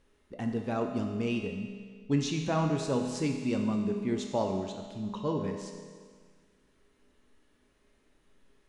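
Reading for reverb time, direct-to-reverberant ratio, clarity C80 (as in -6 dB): 1.7 s, 2.0 dB, 6.0 dB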